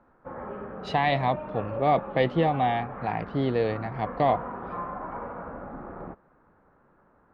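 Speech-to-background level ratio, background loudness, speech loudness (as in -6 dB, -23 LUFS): 10.5 dB, -37.5 LUFS, -27.0 LUFS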